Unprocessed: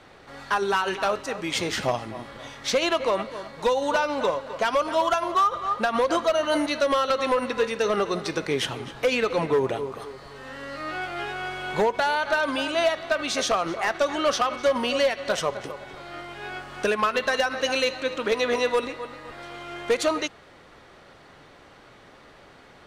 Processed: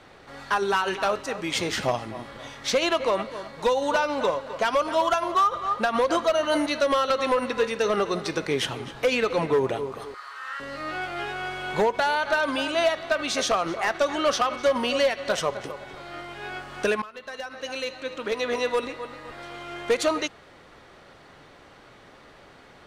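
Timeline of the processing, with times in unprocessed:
10.14–10.6 resonant high-pass 1300 Hz, resonance Q 3.9
17.02–19.18 fade in, from -21 dB

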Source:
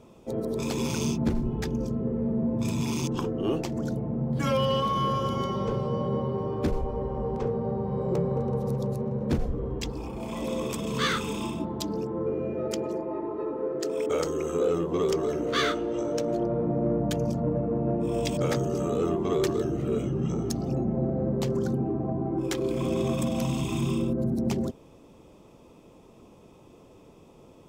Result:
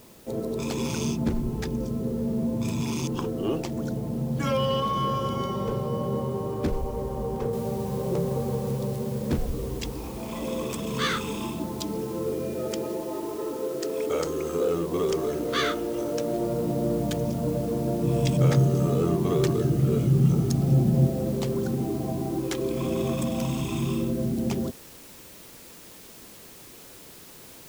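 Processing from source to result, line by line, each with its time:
7.53 noise floor step -55 dB -48 dB
18.03–21.07 bell 140 Hz +12 dB

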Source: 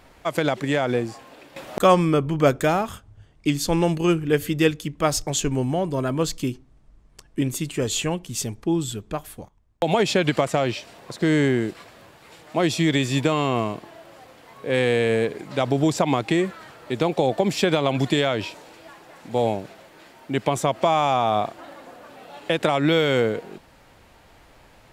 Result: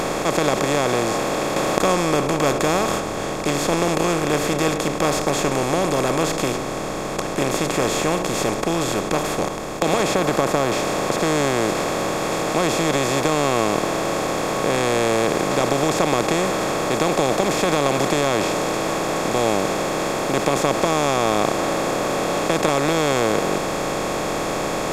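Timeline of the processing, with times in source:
10.15–10.72 band shelf 4400 Hz -15 dB 2.5 oct
whole clip: per-bin compression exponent 0.2; notch 3000 Hz, Q 13; gain -8 dB

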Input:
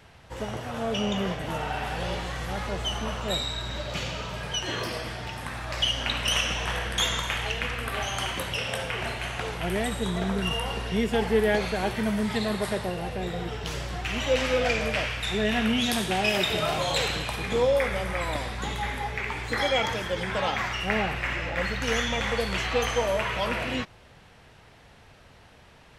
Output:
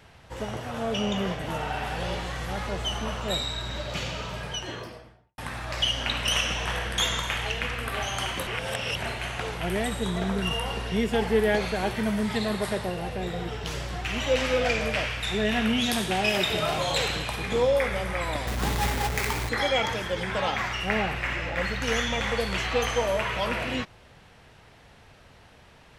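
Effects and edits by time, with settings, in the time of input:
4.29–5.38 studio fade out
8.47–9.02 reverse
18.47–19.49 half-waves squared off

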